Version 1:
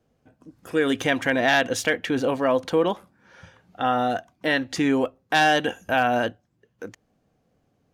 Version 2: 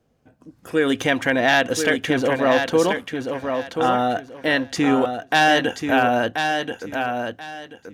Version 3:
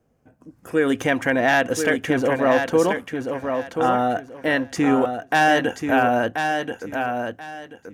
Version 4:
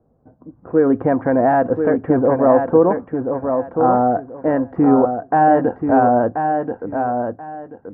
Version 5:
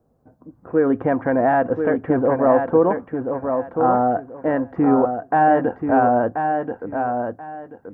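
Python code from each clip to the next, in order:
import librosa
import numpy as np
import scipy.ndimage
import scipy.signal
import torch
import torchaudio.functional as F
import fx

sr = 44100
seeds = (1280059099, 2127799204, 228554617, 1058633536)

y1 = fx.echo_feedback(x, sr, ms=1033, feedback_pct=23, wet_db=-6.0)
y1 = y1 * 10.0 ** (2.5 / 20.0)
y2 = fx.peak_eq(y1, sr, hz=3800.0, db=-9.0, octaves=0.9)
y3 = scipy.signal.sosfilt(scipy.signal.butter(4, 1100.0, 'lowpass', fs=sr, output='sos'), y2)
y3 = y3 * 10.0 ** (5.5 / 20.0)
y4 = fx.high_shelf(y3, sr, hz=2100.0, db=11.5)
y4 = y4 * 10.0 ** (-3.5 / 20.0)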